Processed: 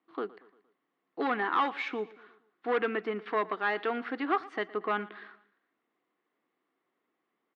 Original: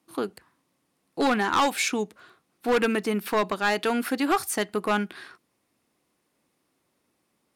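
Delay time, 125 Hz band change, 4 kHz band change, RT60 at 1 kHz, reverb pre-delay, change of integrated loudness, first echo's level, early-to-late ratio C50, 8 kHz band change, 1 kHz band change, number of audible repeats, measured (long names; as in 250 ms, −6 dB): 116 ms, below −10 dB, −12.0 dB, no reverb audible, no reverb audible, −6.5 dB, −20.0 dB, no reverb audible, below −35 dB, −4.5 dB, 3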